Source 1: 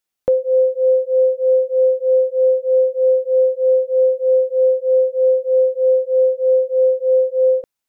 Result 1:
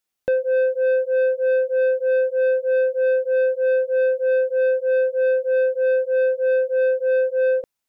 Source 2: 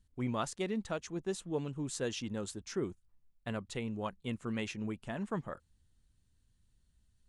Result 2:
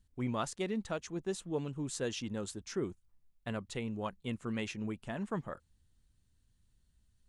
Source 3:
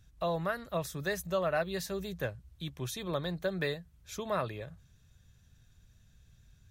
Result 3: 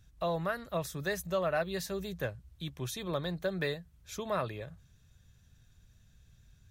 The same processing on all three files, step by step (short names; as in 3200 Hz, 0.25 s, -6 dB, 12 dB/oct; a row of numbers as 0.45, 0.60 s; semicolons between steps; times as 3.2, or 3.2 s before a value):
soft clip -15.5 dBFS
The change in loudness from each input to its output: -4.0, 0.0, 0.0 LU